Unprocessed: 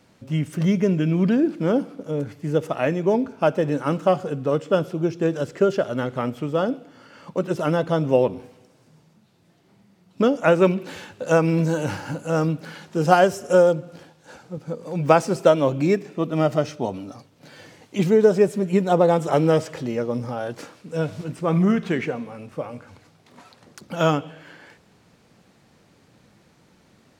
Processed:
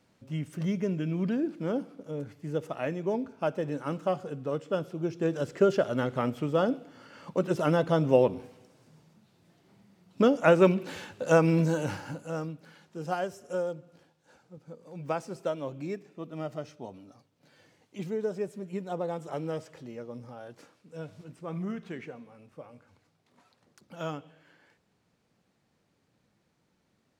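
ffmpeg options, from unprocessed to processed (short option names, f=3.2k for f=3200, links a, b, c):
-af "volume=-3.5dB,afade=t=in:st=4.91:d=0.79:silence=0.473151,afade=t=out:st=11.52:d=1:silence=0.237137"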